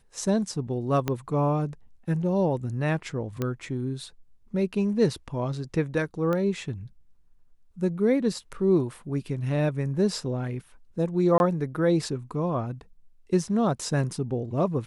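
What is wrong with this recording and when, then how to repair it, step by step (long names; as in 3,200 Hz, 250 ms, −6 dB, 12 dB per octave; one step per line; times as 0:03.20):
0:01.08: click −12 dBFS
0:03.42: click −15 dBFS
0:06.33: click −17 dBFS
0:11.38–0:11.40: drop-out 21 ms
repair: click removal
repair the gap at 0:11.38, 21 ms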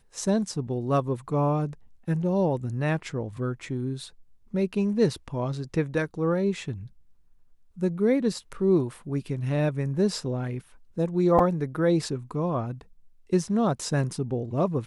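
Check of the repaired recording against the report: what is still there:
0:01.08: click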